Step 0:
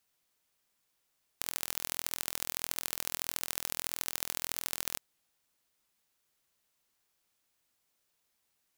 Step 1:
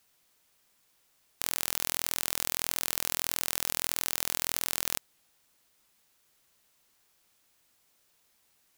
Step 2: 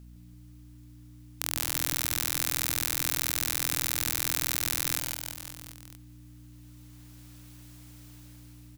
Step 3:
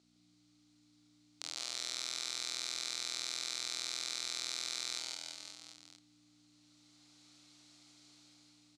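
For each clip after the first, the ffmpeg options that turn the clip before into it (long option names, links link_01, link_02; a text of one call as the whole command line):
ffmpeg -i in.wav -af "alimiter=limit=-11dB:level=0:latency=1:release=38,volume=9dB" out.wav
ffmpeg -i in.wav -filter_complex "[0:a]dynaudnorm=framelen=810:gausssize=3:maxgain=12.5dB,aeval=exprs='val(0)+0.00447*(sin(2*PI*60*n/s)+sin(2*PI*2*60*n/s)/2+sin(2*PI*3*60*n/s)/3+sin(2*PI*4*60*n/s)/4+sin(2*PI*5*60*n/s)/5)':channel_layout=same,asplit=2[link_01][link_02];[link_02]aecho=0:1:160|336|529.6|742.6|976.8:0.631|0.398|0.251|0.158|0.1[link_03];[link_01][link_03]amix=inputs=2:normalize=0,volume=-1dB" out.wav
ffmpeg -i in.wav -filter_complex "[0:a]asoftclip=type=tanh:threshold=-5dB,highpass=490,equalizer=frequency=520:width_type=q:width=4:gain=-6,equalizer=frequency=990:width_type=q:width=4:gain=-8,equalizer=frequency=1700:width_type=q:width=4:gain=-10,equalizer=frequency=2800:width_type=q:width=4:gain=-4,equalizer=frequency=4200:width_type=q:width=4:gain=7,lowpass=frequency=7300:width=0.5412,lowpass=frequency=7300:width=1.3066,asplit=2[link_01][link_02];[link_02]adelay=34,volume=-6dB[link_03];[link_01][link_03]amix=inputs=2:normalize=0,volume=-4dB" out.wav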